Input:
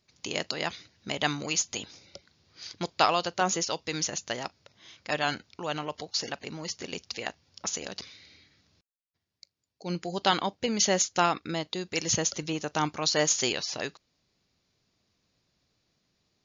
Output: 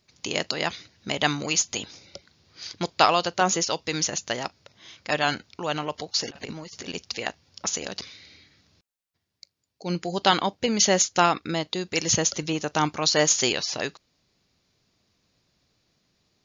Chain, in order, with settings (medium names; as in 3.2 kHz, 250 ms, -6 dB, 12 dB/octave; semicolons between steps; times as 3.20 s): 6.30–6.94 s: compressor with a negative ratio -41 dBFS, ratio -0.5; trim +4.5 dB